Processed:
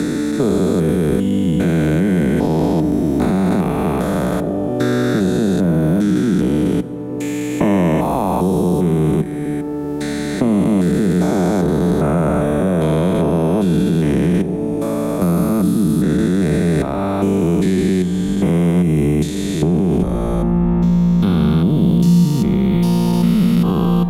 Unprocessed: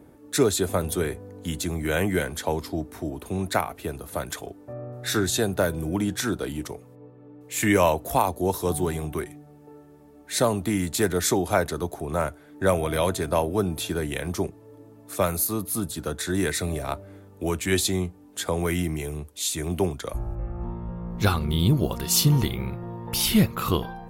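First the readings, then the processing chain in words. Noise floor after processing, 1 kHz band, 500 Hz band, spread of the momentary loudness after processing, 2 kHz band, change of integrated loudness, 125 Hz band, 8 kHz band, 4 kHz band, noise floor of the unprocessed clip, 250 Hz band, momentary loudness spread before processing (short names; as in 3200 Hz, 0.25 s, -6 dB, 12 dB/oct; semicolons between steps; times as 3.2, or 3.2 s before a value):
-22 dBFS, +4.5 dB, +8.0 dB, 5 LU, +2.0 dB, +9.5 dB, +12.0 dB, -5.0 dB, -2.0 dB, -50 dBFS, +14.5 dB, 12 LU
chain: stepped spectrum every 0.4 s; resonant low shelf 140 Hz -8 dB, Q 3; in parallel at -0.5 dB: negative-ratio compressor -32 dBFS, ratio -0.5; on the sum: tilt -2.5 dB/oct; plate-style reverb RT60 1.5 s, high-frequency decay 0.65×, DRR 14.5 dB; three-band squash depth 70%; gain +4.5 dB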